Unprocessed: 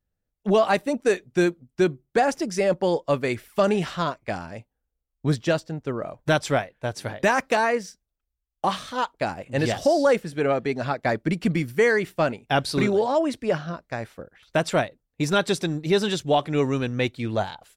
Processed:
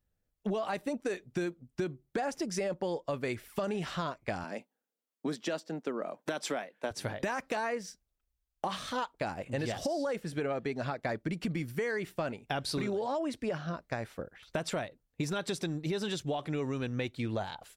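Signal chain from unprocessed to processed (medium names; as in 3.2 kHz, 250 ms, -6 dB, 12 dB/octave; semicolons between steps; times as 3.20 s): 4.44–6.91 s: steep high-pass 190 Hz 36 dB/octave; peak limiter -15.5 dBFS, peak gain reduction 8.5 dB; compression 4:1, threshold -32 dBFS, peak gain reduction 11 dB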